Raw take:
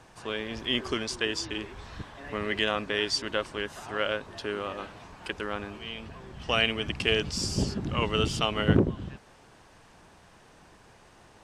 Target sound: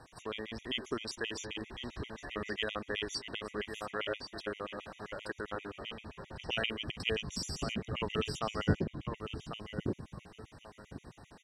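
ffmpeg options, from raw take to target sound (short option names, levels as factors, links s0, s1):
-filter_complex "[0:a]asplit=2[s0][s1];[s1]acompressor=threshold=0.01:ratio=6,volume=1.06[s2];[s0][s2]amix=inputs=2:normalize=0,asplit=2[s3][s4];[s4]adelay=1099,lowpass=f=2200:p=1,volume=0.531,asplit=2[s5][s6];[s6]adelay=1099,lowpass=f=2200:p=1,volume=0.28,asplit=2[s7][s8];[s8]adelay=1099,lowpass=f=2200:p=1,volume=0.28,asplit=2[s9][s10];[s10]adelay=1099,lowpass=f=2200:p=1,volume=0.28[s11];[s3][s5][s7][s9][s11]amix=inputs=5:normalize=0,afftfilt=real='re*gt(sin(2*PI*7.6*pts/sr)*(1-2*mod(floor(b*sr/1024/1900),2)),0)':imag='im*gt(sin(2*PI*7.6*pts/sr)*(1-2*mod(floor(b*sr/1024/1900),2)),0)':win_size=1024:overlap=0.75,volume=0.447"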